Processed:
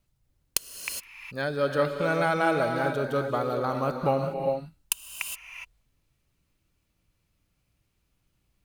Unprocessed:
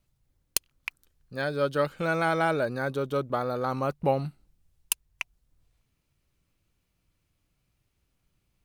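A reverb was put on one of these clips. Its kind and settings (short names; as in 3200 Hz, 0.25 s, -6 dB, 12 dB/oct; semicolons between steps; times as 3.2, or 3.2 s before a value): non-linear reverb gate 0.44 s rising, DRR 4 dB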